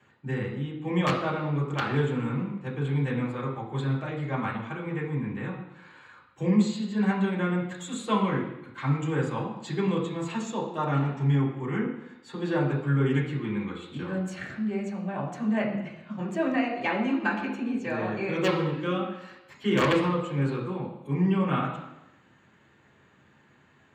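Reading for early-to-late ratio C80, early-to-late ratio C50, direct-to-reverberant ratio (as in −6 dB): 8.0 dB, 5.5 dB, −4.5 dB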